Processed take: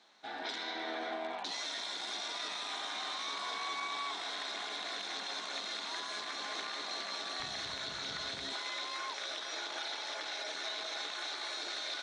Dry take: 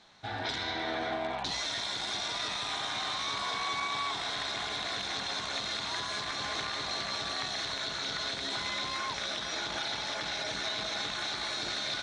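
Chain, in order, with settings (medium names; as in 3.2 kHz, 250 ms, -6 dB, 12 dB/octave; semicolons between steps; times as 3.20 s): high-pass 240 Hz 24 dB/octave, from 7.40 s 47 Hz, from 8.53 s 320 Hz; trim -5 dB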